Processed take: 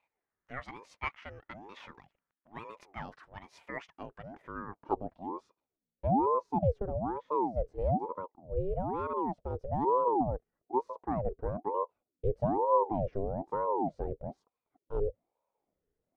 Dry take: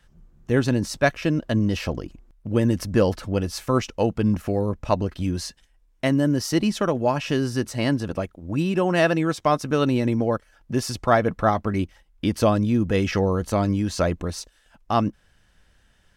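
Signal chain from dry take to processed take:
dynamic equaliser 260 Hz, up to +7 dB, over −35 dBFS, Q 0.84
band-pass filter sweep 1,500 Hz → 240 Hz, 0:04.00–0:05.91
ring modulator whose carrier an LFO sweeps 480 Hz, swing 60%, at 1.1 Hz
level −7 dB

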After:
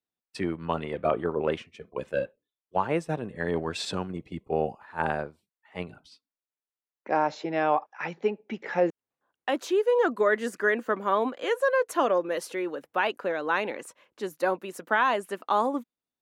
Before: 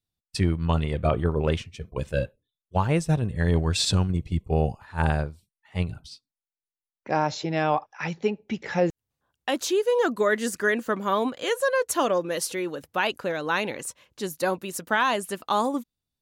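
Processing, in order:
three-way crossover with the lows and the highs turned down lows −23 dB, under 220 Hz, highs −12 dB, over 2,600 Hz

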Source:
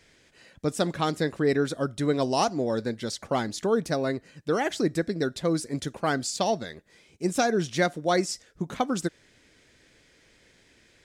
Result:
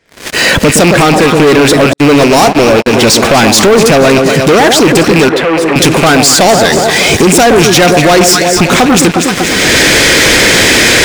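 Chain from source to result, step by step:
loose part that buzzes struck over −35 dBFS, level −27 dBFS
camcorder AGC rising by 43 dB per second
0:00.90–0:01.35: low-pass filter 3,700 Hz 6 dB per octave
delay that swaps between a low-pass and a high-pass 120 ms, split 900 Hz, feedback 73%, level −9 dB
0:01.93–0:02.93: noise gate −24 dBFS, range −40 dB
low-shelf EQ 140 Hz −10 dB
leveller curve on the samples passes 5
0:05.29–0:05.76: three-way crossover with the lows and the highs turned down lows −13 dB, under 400 Hz, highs −18 dB, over 2,700 Hz
boost into a limiter +17.5 dB
one half of a high-frequency compander decoder only
level −1 dB

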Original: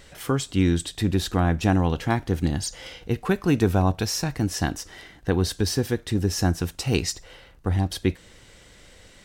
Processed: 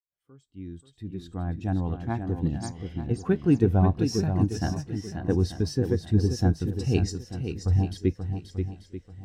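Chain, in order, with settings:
fade in at the beginning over 2.75 s
feedback echo with a long and a short gap by turns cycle 887 ms, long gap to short 1.5 to 1, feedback 37%, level −5 dB
every bin expanded away from the loudest bin 1.5 to 1
level −3 dB

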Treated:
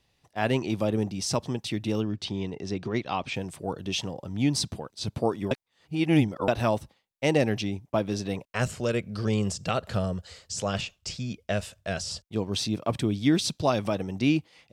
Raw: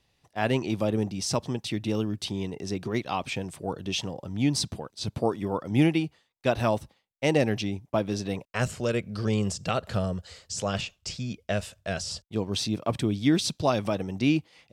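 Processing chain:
0:02.00–0:03.34: low-pass filter 5,600 Hz 12 dB per octave
0:05.51–0:06.48: reverse

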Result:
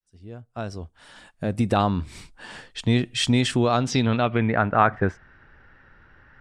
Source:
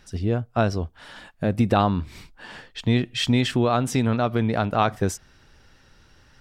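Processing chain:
fade in at the beginning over 2.12 s
low-pass filter sweep 9,100 Hz → 1,700 Hz, 0:03.51–0:04.60

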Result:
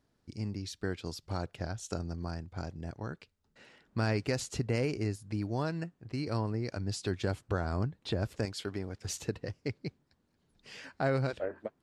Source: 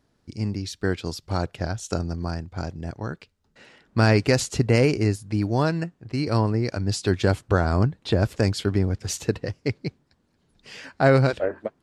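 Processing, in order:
0:08.45–0:09.05: low-shelf EQ 240 Hz −11 dB
downward compressor 1.5 to 1, threshold −29 dBFS, peak gain reduction 6 dB
level −7 dB

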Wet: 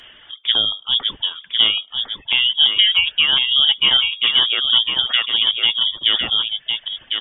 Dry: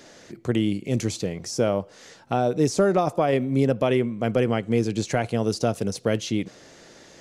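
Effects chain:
reverb reduction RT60 1.2 s
on a send: single-tap delay 1,054 ms −5.5 dB
on the sum: voice inversion scrambler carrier 3,500 Hz
level +6 dB
Ogg Vorbis 32 kbit/s 22,050 Hz

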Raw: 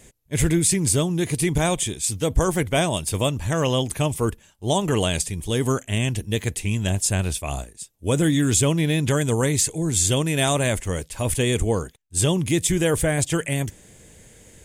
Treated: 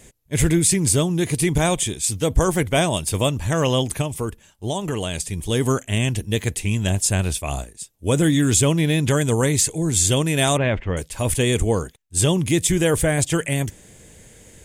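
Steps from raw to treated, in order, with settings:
0:04.01–0:05.32: downward compressor 3 to 1, threshold −25 dBFS, peak gain reduction 7 dB
0:10.57–0:10.97: low-pass filter 3,000 Hz 24 dB per octave
level +2 dB

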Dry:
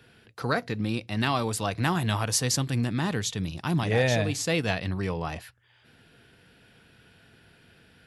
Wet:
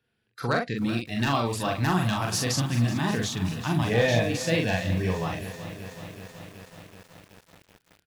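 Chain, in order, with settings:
wave folding −14 dBFS
dynamic equaliser 8,900 Hz, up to −7 dB, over −46 dBFS, Q 0.91
noise reduction from a noise print of the clip's start 21 dB
ambience of single reflections 33 ms −17 dB, 43 ms −3 dB
feedback echo at a low word length 377 ms, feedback 80%, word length 7 bits, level −13.5 dB

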